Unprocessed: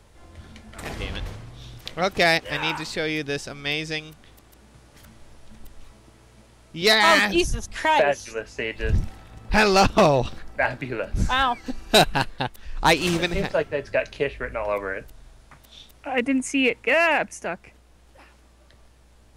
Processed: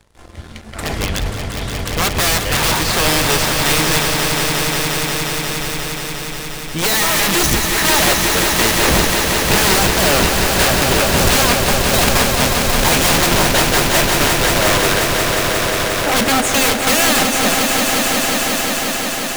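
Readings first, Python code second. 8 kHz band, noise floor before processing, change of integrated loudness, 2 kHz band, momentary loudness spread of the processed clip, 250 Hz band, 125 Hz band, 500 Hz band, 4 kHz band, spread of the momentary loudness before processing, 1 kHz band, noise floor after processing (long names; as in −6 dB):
+20.5 dB, −54 dBFS, +8.5 dB, +8.0 dB, 9 LU, +8.0 dB, +10.5 dB, +5.5 dB, +11.5 dB, 16 LU, +7.0 dB, −26 dBFS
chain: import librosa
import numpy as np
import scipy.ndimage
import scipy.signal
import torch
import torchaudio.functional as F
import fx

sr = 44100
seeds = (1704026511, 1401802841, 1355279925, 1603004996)

y = fx.leveller(x, sr, passes=3)
y = (np.mod(10.0 ** (12.5 / 20.0) * y + 1.0, 2.0) - 1.0) / 10.0 ** (12.5 / 20.0)
y = fx.echo_swell(y, sr, ms=178, loudest=5, wet_db=-7)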